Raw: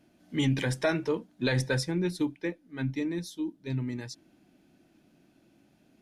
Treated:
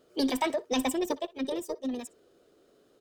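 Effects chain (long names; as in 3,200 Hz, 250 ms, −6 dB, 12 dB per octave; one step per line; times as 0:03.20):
formants moved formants −5 semitones
far-end echo of a speakerphone 120 ms, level −20 dB
wrong playback speed 7.5 ips tape played at 15 ips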